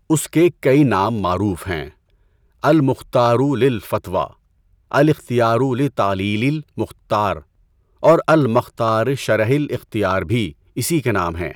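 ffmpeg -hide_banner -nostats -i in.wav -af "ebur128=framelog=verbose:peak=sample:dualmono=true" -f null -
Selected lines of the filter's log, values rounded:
Integrated loudness:
  I:         -15.1 LUFS
  Threshold: -25.6 LUFS
Loudness range:
  LRA:         1.7 LU
  Threshold: -35.7 LUFS
  LRA low:   -16.6 LUFS
  LRA high:  -14.9 LUFS
Sample peak:
  Peak:       -2.6 dBFS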